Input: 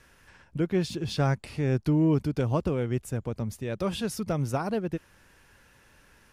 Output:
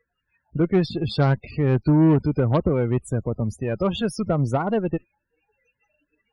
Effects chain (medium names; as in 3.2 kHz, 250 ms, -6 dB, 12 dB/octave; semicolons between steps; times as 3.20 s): loudest bins only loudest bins 32; Chebyshev shaper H 4 -19 dB, 6 -20 dB, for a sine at -14.5 dBFS; spectral noise reduction 27 dB; trim +6.5 dB